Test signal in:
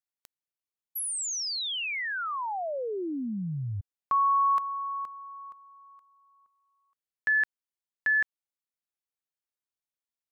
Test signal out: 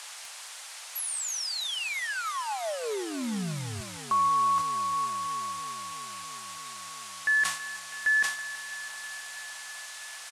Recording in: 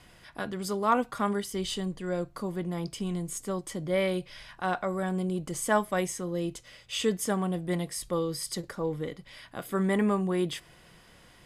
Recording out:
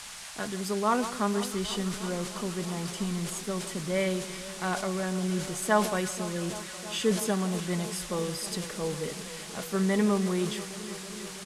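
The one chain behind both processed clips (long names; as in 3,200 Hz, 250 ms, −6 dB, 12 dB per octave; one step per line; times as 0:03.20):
comb filter 4.7 ms, depth 33%
on a send: delay that swaps between a low-pass and a high-pass 163 ms, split 1,300 Hz, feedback 90%, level −14 dB
on the sum: noise in a band 680–9,900 Hz −42 dBFS
level that may fall only so fast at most 100 dB per second
level −1.5 dB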